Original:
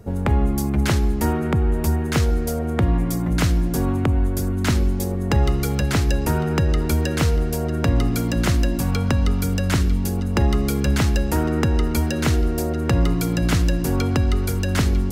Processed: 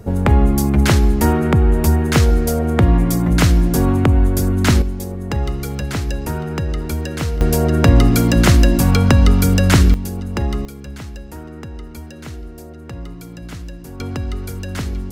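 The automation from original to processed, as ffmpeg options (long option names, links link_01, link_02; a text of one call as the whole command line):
ffmpeg -i in.wav -af "asetnsamples=nb_out_samples=441:pad=0,asendcmd='4.82 volume volume -2.5dB;7.41 volume volume 8dB;9.94 volume volume -2dB;10.65 volume volume -13dB;14 volume volume -5dB',volume=6dB" out.wav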